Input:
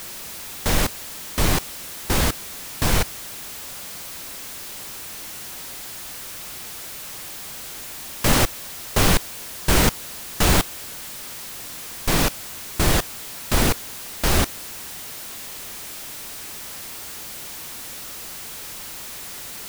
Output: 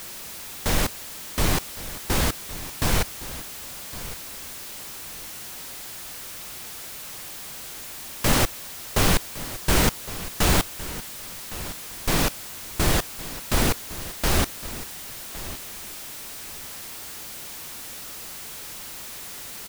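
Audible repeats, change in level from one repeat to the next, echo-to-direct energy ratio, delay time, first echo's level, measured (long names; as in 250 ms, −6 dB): 2, −14.5 dB, −15.5 dB, 1,112 ms, −15.5 dB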